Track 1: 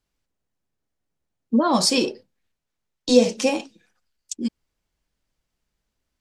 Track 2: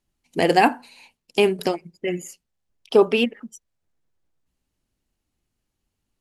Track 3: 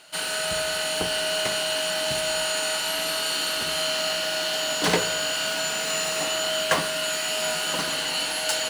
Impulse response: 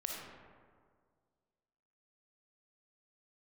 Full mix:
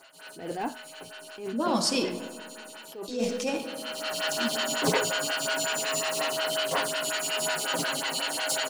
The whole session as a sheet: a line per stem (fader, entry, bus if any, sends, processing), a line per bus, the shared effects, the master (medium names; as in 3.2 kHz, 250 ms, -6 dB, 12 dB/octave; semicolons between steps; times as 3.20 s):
-10.0 dB, 0.00 s, send -4.5 dB, none
-12.0 dB, 0.00 s, no send, de-esser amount 90%; bit crusher 9-bit
0.0 dB, 0.00 s, no send, comb 7.4 ms, depth 81%; lamp-driven phase shifter 5.5 Hz; auto duck -16 dB, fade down 0.30 s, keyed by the second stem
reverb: on, RT60 1.9 s, pre-delay 15 ms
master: attacks held to a fixed rise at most 100 dB/s